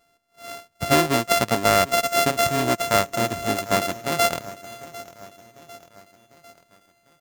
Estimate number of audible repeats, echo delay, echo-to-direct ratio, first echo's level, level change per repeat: 3, 749 ms, -17.0 dB, -18.5 dB, -5.5 dB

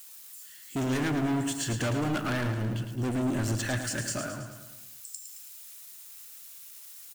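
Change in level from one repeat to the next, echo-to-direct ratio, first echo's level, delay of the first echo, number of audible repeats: -5.0 dB, -6.5 dB, -8.0 dB, 109 ms, 5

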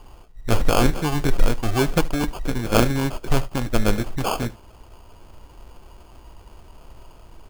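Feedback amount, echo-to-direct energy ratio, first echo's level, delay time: no regular repeats, -21.5 dB, -21.5 dB, 74 ms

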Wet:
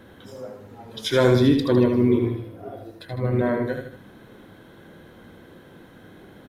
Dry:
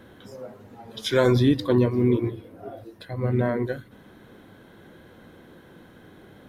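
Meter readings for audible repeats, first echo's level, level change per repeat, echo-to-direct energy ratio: 3, -6.0 dB, -7.5 dB, -5.0 dB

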